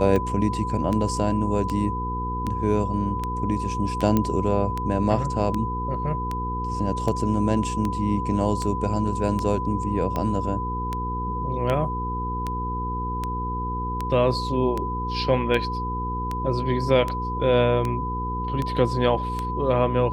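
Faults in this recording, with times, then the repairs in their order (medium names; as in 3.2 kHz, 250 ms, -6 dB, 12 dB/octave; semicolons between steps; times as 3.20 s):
hum 60 Hz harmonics 8 -30 dBFS
tick 78 rpm -14 dBFS
whine 1 kHz -28 dBFS
4.17 s: pop -9 dBFS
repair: de-click; de-hum 60 Hz, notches 8; band-stop 1 kHz, Q 30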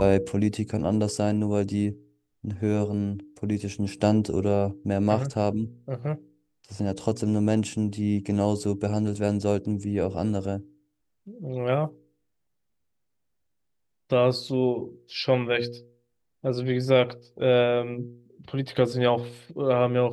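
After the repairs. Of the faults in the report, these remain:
nothing left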